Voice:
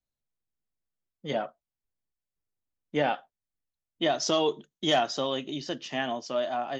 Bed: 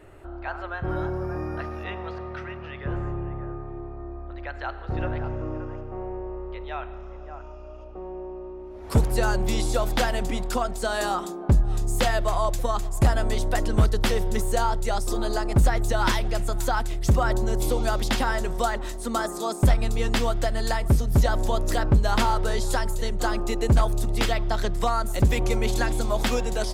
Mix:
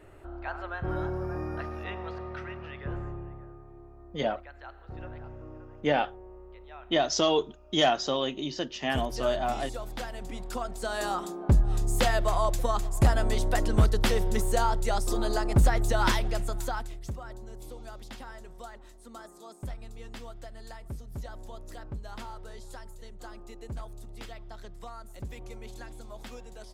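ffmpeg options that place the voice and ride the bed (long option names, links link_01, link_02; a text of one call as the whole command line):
ffmpeg -i stem1.wav -i stem2.wav -filter_complex "[0:a]adelay=2900,volume=1dB[link_01];[1:a]volume=8dB,afade=type=out:start_time=2.61:duration=0.89:silence=0.316228,afade=type=in:start_time=10.15:duration=1.48:silence=0.266073,afade=type=out:start_time=16.1:duration=1.07:silence=0.133352[link_02];[link_01][link_02]amix=inputs=2:normalize=0" out.wav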